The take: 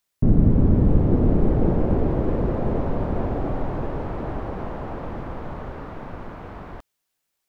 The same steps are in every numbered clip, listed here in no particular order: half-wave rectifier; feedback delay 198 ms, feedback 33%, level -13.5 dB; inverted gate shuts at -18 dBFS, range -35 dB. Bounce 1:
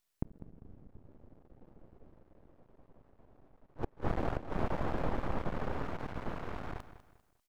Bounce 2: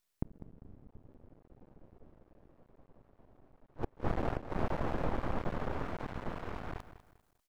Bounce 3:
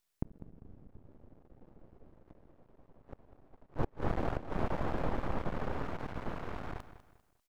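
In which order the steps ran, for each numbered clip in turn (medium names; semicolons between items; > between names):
inverted gate > half-wave rectifier > feedback delay; inverted gate > feedback delay > half-wave rectifier; half-wave rectifier > inverted gate > feedback delay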